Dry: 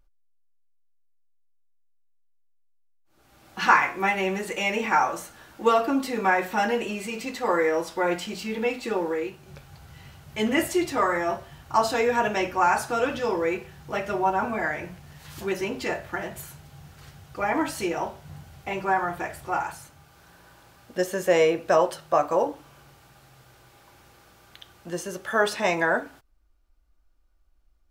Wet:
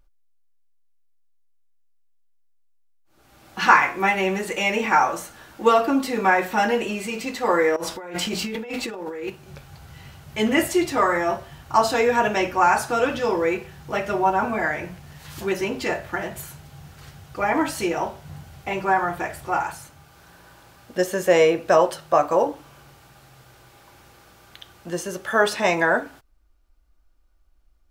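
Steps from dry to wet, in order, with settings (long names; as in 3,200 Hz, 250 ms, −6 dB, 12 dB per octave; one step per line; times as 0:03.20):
0:07.76–0:09.30: compressor whose output falls as the input rises −34 dBFS, ratio −1
level +3.5 dB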